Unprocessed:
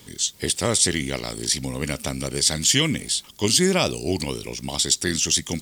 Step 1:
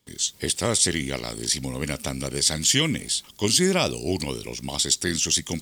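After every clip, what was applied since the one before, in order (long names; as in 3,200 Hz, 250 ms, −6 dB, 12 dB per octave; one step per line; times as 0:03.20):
noise gate with hold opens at −35 dBFS
level −1.5 dB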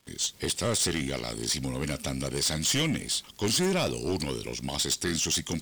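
high-shelf EQ 8,700 Hz −6 dB
surface crackle 230 per second −46 dBFS
soft clipping −21.5 dBFS, distortion −10 dB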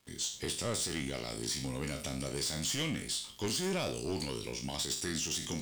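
peak hold with a decay on every bin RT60 0.36 s
brickwall limiter −22 dBFS, peak gain reduction 7.5 dB
level −6 dB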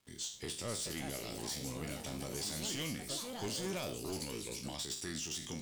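delay with pitch and tempo change per echo 537 ms, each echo +5 semitones, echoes 2, each echo −6 dB
level −5.5 dB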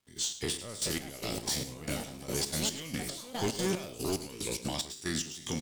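gate pattern "..xx.xx...xx." 184 BPM −12 dB
single-tap delay 107 ms −14 dB
level +8.5 dB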